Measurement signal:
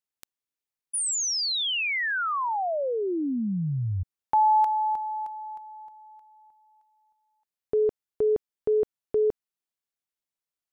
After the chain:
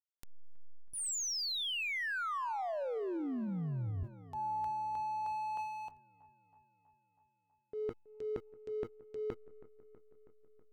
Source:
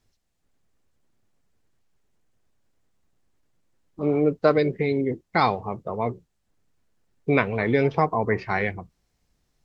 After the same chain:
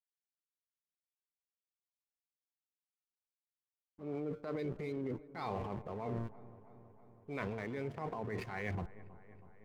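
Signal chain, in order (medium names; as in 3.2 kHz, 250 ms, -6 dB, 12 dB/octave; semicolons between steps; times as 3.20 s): de-hum 115.7 Hz, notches 10; level rider gain up to 9 dB; hysteresis with a dead band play -31 dBFS; reverse; compression 12:1, threshold -33 dBFS; reverse; transient shaper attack -5 dB, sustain +9 dB; on a send: feedback echo behind a low-pass 323 ms, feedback 67%, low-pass 1.7 kHz, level -18 dB; on the sum: trim -3 dB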